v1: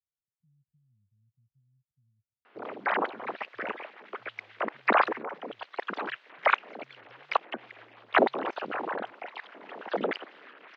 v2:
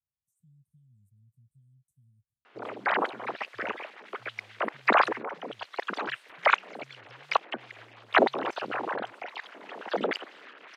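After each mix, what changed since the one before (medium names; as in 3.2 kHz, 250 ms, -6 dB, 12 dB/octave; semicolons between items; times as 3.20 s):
speech +8.0 dB; master: remove distance through air 200 m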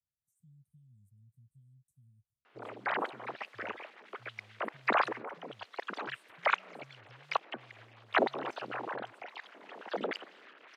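background -7.0 dB; reverb: on, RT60 2.0 s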